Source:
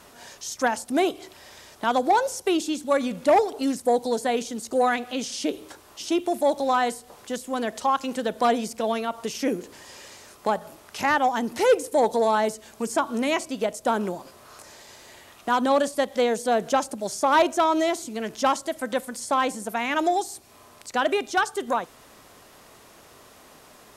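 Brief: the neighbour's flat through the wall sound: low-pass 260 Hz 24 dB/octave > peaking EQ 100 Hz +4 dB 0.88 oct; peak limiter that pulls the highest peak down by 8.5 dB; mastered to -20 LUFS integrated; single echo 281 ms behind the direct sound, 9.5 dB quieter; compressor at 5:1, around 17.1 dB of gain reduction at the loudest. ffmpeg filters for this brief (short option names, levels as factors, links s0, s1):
-af "acompressor=threshold=0.02:ratio=5,alimiter=level_in=1.58:limit=0.0631:level=0:latency=1,volume=0.631,lowpass=f=260:w=0.5412,lowpass=f=260:w=1.3066,equalizer=f=100:t=o:w=0.88:g=4,aecho=1:1:281:0.335,volume=23.7"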